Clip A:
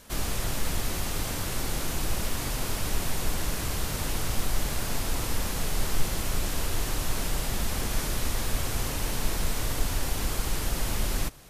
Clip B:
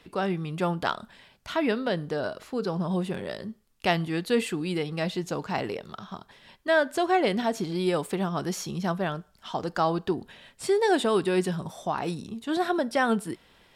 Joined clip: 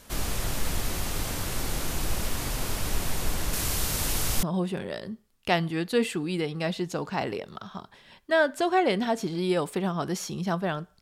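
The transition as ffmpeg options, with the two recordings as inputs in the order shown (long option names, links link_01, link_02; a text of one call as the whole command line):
ffmpeg -i cue0.wav -i cue1.wav -filter_complex "[0:a]asettb=1/sr,asplit=3[link_01][link_02][link_03];[link_01]atrim=end=3.534[link_04];[link_02]atrim=start=3.53:end=4.43,asetpts=PTS-STARTPTS,afade=type=in:duration=0.004:curve=qsin,afade=type=out:start_time=0.896:duration=0.004:curve=qsin,highshelf=frequency=3300:gain=7[link_05];[link_03]atrim=start=4.426[link_06];[link_04][link_05]acrossfade=duration=0.004:curve1=hsin:curve2=qsin[link_07];[link_07][link_06]acrossfade=duration=0.004:curve1=qsin:curve2=hsin,apad=whole_dur=11.01,atrim=end=11.01,atrim=end=4.432[link_08];[1:a]atrim=start=2.798:end=9.38[link_09];[link_08][link_09]acrossfade=duration=0.004:curve1=hsin:curve2=hsin" out.wav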